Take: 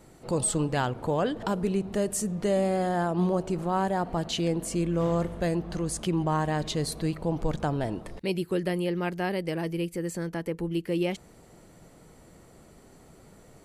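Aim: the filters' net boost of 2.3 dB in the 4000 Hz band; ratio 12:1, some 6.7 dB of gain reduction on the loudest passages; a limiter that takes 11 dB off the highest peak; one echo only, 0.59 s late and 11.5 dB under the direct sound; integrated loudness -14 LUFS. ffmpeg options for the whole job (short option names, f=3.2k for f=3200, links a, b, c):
-af "equalizer=f=4k:t=o:g=3,acompressor=threshold=-28dB:ratio=12,alimiter=level_in=3.5dB:limit=-24dB:level=0:latency=1,volume=-3.5dB,aecho=1:1:590:0.266,volume=22.5dB"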